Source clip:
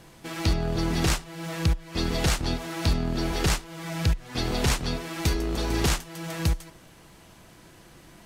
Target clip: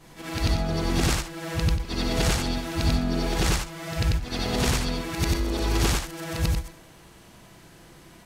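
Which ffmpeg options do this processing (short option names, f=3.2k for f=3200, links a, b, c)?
-af "afftfilt=real='re':imag='-im':win_size=8192:overlap=0.75,volume=5.5dB"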